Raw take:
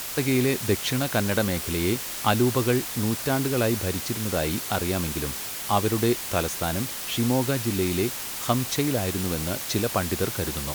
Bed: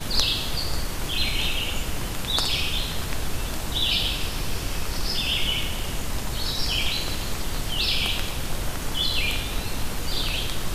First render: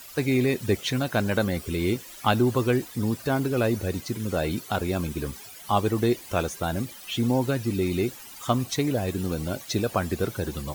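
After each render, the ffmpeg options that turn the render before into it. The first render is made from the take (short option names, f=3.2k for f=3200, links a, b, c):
-af "afftdn=nr=15:nf=-34"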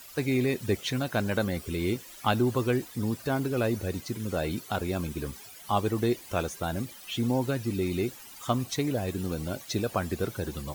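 -af "volume=-3.5dB"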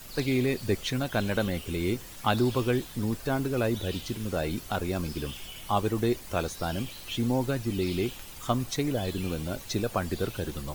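-filter_complex "[1:a]volume=-19.5dB[a];[0:a][a]amix=inputs=2:normalize=0"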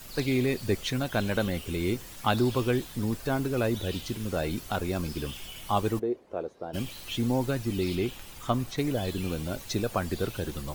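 -filter_complex "[0:a]asplit=3[a][b][c];[a]afade=t=out:st=5.98:d=0.02[d];[b]bandpass=f=460:t=q:w=1.7,afade=t=in:st=5.98:d=0.02,afade=t=out:st=6.73:d=0.02[e];[c]afade=t=in:st=6.73:d=0.02[f];[d][e][f]amix=inputs=3:normalize=0,asettb=1/sr,asplit=3[g][h][i];[g]atrim=end=7.954[j];[h]atrim=start=7.95:end=8.78,asetpts=PTS-STARTPTS,afade=t=in:d=0.004:c=qsin,afade=t=out:st=0.826:d=0.004:c=qsin,acrossover=split=3700[k][l];[l]acompressor=threshold=-45dB:ratio=4:attack=1:release=60[m];[k][m]amix=inputs=2:normalize=0[n];[i]atrim=start=8.776[o];[j][n]acrossfade=d=0.004:c1=hsin:c2=qsin[p];[p][o]acrossfade=d=0.004:c1=qsin:c2=hsin"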